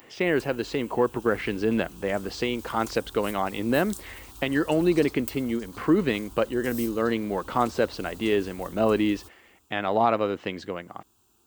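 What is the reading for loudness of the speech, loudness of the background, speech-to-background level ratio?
-26.5 LUFS, -43.5 LUFS, 17.0 dB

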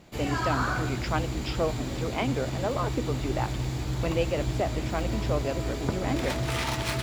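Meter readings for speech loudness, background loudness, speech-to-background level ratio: -32.5 LUFS, -31.0 LUFS, -1.5 dB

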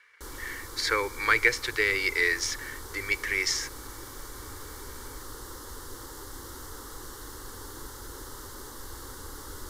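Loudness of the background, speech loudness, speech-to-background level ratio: -42.0 LUFS, -26.5 LUFS, 15.5 dB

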